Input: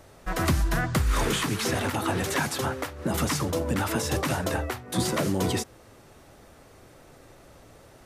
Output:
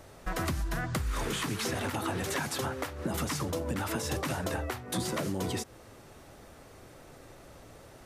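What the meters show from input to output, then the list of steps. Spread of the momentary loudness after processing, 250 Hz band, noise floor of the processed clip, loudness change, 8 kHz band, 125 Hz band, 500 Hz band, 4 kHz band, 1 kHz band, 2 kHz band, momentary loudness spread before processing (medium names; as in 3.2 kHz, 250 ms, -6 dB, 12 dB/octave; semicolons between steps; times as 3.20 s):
20 LU, -6.0 dB, -53 dBFS, -6.0 dB, -5.5 dB, -6.5 dB, -6.0 dB, -5.5 dB, -6.0 dB, -6.0 dB, 5 LU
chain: compression 4:1, threshold -30 dBFS, peak gain reduction 10 dB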